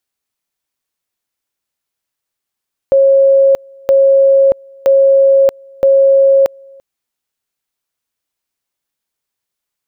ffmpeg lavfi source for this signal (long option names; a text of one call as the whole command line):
ffmpeg -f lavfi -i "aevalsrc='pow(10,(-5-30*gte(mod(t,0.97),0.63))/20)*sin(2*PI*545*t)':duration=3.88:sample_rate=44100" out.wav